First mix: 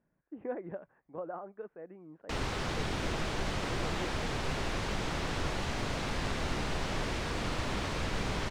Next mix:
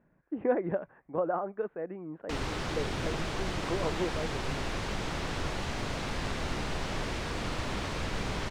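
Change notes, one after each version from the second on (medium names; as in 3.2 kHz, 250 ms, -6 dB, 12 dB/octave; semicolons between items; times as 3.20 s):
speech +10.0 dB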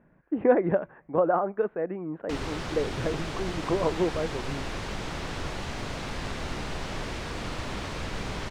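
speech +6.5 dB; reverb: on, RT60 0.70 s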